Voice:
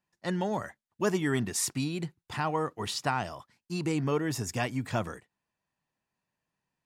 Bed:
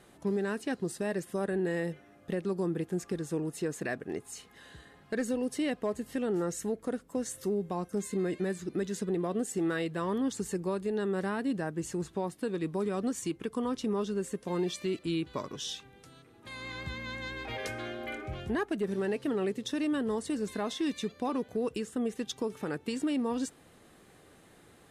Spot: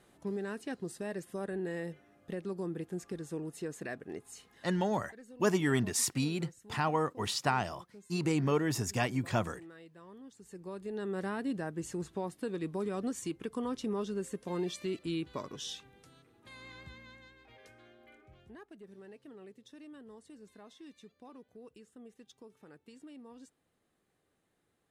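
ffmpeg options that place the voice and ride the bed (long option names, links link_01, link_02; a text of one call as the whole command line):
ffmpeg -i stem1.wav -i stem2.wav -filter_complex "[0:a]adelay=4400,volume=-0.5dB[link_01];[1:a]volume=11.5dB,afade=type=out:start_time=4.53:duration=0.47:silence=0.177828,afade=type=in:start_time=10.4:duration=0.87:silence=0.133352,afade=type=out:start_time=15.78:duration=1.58:silence=0.141254[link_02];[link_01][link_02]amix=inputs=2:normalize=0" out.wav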